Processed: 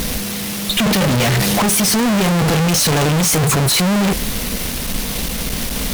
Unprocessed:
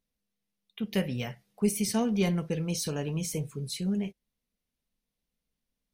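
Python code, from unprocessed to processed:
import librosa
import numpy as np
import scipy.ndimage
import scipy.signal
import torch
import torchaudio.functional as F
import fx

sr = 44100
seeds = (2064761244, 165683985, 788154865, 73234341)

y = fx.power_curve(x, sr, exponent=0.5)
y = fx.fuzz(y, sr, gain_db=53.0, gate_db=-53.0)
y = F.gain(torch.from_numpy(y), -1.0).numpy()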